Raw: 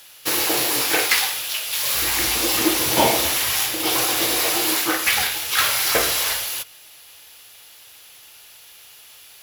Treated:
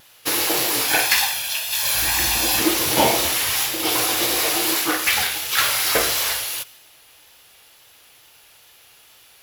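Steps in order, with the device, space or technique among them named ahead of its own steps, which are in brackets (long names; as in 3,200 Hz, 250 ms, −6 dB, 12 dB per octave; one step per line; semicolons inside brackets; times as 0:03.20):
0:00.88–0:02.60: comb filter 1.2 ms, depth 57%
plain cassette with noise reduction switched in (one half of a high-frequency compander decoder only; tape wow and flutter; white noise bed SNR 40 dB)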